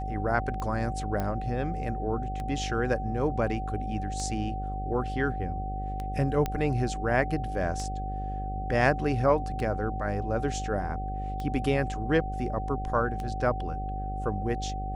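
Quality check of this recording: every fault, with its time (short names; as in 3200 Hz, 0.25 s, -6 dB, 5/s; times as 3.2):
buzz 50 Hz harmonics 15 -34 dBFS
tick 33 1/3 rpm -22 dBFS
tone 760 Hz -35 dBFS
1.2 pop -18 dBFS
6.46 pop -15 dBFS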